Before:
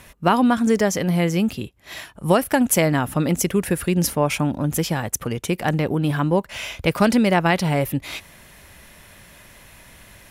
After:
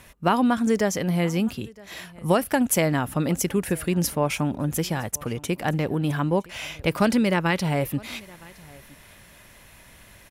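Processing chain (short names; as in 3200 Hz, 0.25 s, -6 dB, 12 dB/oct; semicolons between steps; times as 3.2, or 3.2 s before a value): 7.15–7.6 bell 720 Hz -12 dB 0.2 oct; echo 0.964 s -23.5 dB; gain -3.5 dB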